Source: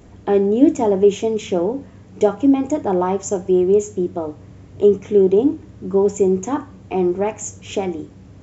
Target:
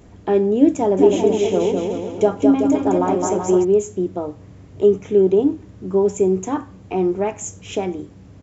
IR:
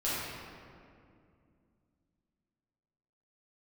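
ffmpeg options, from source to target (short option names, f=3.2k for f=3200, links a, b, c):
-filter_complex "[0:a]asplit=3[a][b][c];[a]afade=t=out:st=0.97:d=0.02[d];[b]aecho=1:1:210|378|512.4|619.9|705.9:0.631|0.398|0.251|0.158|0.1,afade=t=in:st=0.97:d=0.02,afade=t=out:st=3.63:d=0.02[e];[c]afade=t=in:st=3.63:d=0.02[f];[d][e][f]amix=inputs=3:normalize=0,volume=-1dB"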